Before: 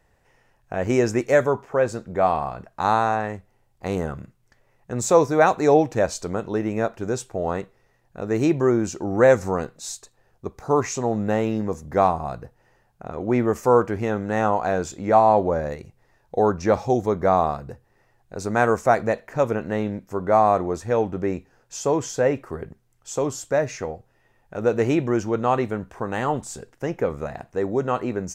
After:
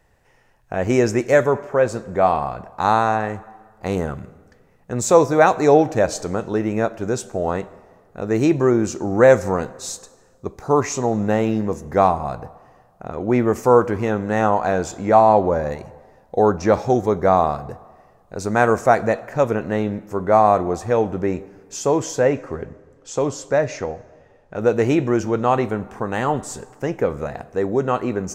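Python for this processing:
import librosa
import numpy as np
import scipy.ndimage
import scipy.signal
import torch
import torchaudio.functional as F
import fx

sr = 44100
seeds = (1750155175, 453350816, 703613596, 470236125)

y = fx.lowpass(x, sr, hz=6700.0, slope=12, at=(22.25, 24.59))
y = fx.rev_plate(y, sr, seeds[0], rt60_s=1.7, hf_ratio=0.65, predelay_ms=0, drr_db=17.0)
y = y * 10.0 ** (3.0 / 20.0)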